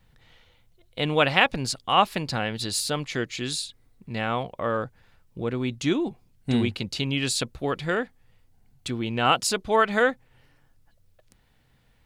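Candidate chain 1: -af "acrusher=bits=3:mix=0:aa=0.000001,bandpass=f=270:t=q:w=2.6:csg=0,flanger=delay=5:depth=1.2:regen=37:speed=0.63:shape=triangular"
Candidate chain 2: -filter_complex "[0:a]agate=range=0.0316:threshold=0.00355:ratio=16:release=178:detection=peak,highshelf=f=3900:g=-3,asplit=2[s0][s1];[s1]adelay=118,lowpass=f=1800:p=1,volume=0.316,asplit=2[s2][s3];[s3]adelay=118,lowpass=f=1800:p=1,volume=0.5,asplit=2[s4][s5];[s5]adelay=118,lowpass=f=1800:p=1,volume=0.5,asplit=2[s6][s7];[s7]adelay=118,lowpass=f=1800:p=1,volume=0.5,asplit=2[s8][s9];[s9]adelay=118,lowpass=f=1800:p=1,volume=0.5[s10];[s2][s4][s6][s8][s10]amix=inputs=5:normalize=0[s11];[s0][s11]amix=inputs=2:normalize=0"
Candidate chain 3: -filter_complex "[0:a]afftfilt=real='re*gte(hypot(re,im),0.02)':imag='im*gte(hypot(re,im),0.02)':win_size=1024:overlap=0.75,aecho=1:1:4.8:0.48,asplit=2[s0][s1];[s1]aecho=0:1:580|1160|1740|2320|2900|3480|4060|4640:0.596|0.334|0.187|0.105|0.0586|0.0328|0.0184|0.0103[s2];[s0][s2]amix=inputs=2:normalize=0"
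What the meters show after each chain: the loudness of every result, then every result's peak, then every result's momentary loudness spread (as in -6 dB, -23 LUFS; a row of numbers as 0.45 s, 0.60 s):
-40.0 LUFS, -26.0 LUFS, -24.0 LUFS; -20.5 dBFS, -4.0 dBFS, -1.5 dBFS; 15 LU, 14 LU, 11 LU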